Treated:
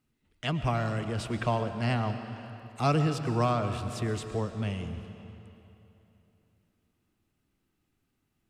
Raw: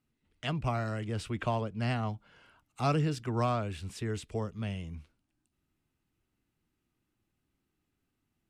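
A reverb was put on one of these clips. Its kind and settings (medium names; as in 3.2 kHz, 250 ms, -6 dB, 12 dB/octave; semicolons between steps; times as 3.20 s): algorithmic reverb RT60 3.1 s, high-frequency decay 0.85×, pre-delay 70 ms, DRR 8.5 dB; trim +3 dB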